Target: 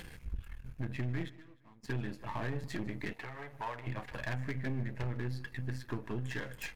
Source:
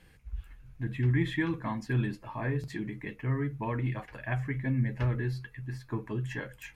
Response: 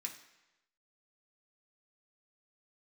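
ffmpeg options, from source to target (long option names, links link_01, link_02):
-filter_complex "[0:a]aeval=exprs='if(lt(val(0),0),0.251*val(0),val(0))':channel_layout=same,acompressor=threshold=-40dB:ratio=4,asoftclip=type=hard:threshold=-35dB,asettb=1/sr,asplit=3[link_01][link_02][link_03];[link_01]atrim=end=3.134[link_04];[link_02]atrim=start=3.13:end=3.87,asetpts=PTS-STARTPTS,afade=type=in:duration=0.004:curve=qsin,afade=type=out:start_time=0.736:duration=0.004:curve=qsin,lowshelf=frequency=450:width_type=q:width=1.5:gain=-13[link_05];[link_03]atrim=start=3.866[link_06];[link_04][link_05]acrossfade=duration=0.004:curve1=hsin:curve2=qsin[link_07];[link_07][link_06]acrossfade=duration=0.004:curve1=qsin:curve2=hsin,acompressor=mode=upward:threshold=-48dB:ratio=2.5,asplit=3[link_08][link_09][link_10];[link_08]afade=type=out:start_time=1.28:duration=0.02[link_11];[link_09]agate=range=-33dB:threshold=-28dB:ratio=3:detection=peak,afade=type=in:start_time=1.28:duration=0.02,afade=type=out:start_time=1.83:duration=0.02[link_12];[link_10]afade=type=in:start_time=1.83:duration=0.02[link_13];[link_11][link_12][link_13]amix=inputs=3:normalize=0,aecho=1:1:153|306|459:0.0841|0.0412|0.0202,volume=7dB"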